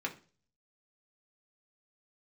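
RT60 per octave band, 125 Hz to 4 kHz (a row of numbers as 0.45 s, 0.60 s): 0.70 s, 0.45 s, 0.40 s, 0.35 s, 0.35 s, 0.40 s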